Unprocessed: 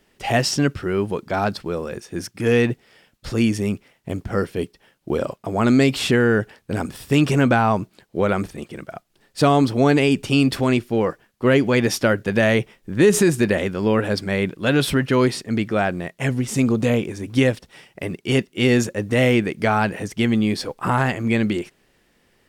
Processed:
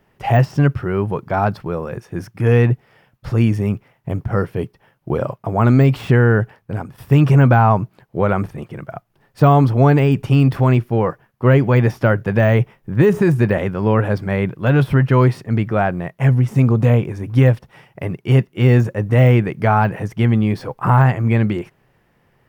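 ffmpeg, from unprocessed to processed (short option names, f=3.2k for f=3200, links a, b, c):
-filter_complex "[0:a]asplit=2[a][b];[a]atrim=end=6.98,asetpts=PTS-STARTPTS,afade=t=out:st=6.39:d=0.59:silence=0.281838[c];[b]atrim=start=6.98,asetpts=PTS-STARTPTS,afade=t=in:d=0.004:c=hsin:silence=0.281838[d];[c][d]concat=n=2:v=0:a=1,equalizer=f=930:t=o:w=1.2:g=6,deesser=0.6,equalizer=f=125:t=o:w=1:g=12,equalizer=f=250:t=o:w=1:g=-3,equalizer=f=4k:t=o:w=1:g=-7,equalizer=f=8k:t=o:w=1:g=-10"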